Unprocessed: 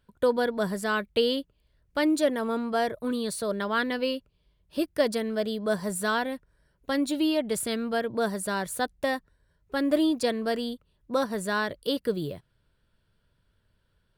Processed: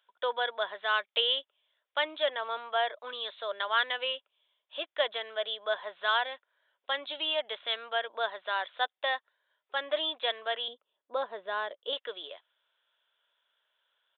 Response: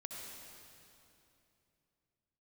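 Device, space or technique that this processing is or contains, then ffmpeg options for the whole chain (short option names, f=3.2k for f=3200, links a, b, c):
musical greeting card: -filter_complex "[0:a]aresample=8000,aresample=44100,highpass=f=650:w=0.5412,highpass=f=650:w=1.3066,equalizer=f=3.4k:t=o:w=0.41:g=8.5,asettb=1/sr,asplit=3[a][b][c];[a]atrim=end=10.684[d];[b]atrim=start=10.68:end=11.93,asetpts=PTS-STARTPTS,afade=t=in:d=0.004:c=qsin,afade=t=out:st=1.246:d=0.004:c=qsin,tiltshelf=f=650:g=10[e];[c]atrim=start=11.926[f];[d][e]acrossfade=d=0.004:c1=hsin:c2=qsin[g];[g][f]acrossfade=d=0.004:c1=qsin:c2=hsin"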